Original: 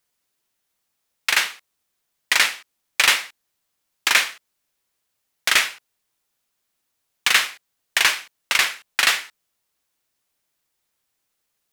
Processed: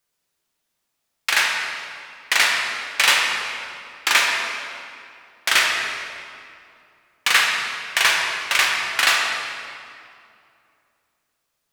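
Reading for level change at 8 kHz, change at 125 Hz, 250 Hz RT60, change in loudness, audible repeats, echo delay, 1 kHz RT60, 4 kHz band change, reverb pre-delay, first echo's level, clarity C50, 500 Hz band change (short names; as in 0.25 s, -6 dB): 0.0 dB, n/a, 2.9 s, +0.5 dB, none, none, 2.4 s, +1.0 dB, 4 ms, none, 1.0 dB, +4.0 dB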